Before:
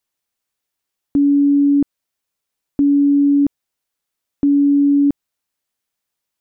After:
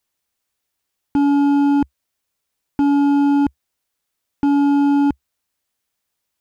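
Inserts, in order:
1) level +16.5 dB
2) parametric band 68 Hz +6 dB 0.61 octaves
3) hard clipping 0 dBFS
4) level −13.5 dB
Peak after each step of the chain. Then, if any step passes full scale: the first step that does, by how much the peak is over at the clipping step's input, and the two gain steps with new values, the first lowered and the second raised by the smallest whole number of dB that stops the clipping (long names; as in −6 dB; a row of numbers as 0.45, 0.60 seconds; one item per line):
+7.0, +7.5, 0.0, −13.5 dBFS
step 1, 7.5 dB
step 1 +8.5 dB, step 4 −5.5 dB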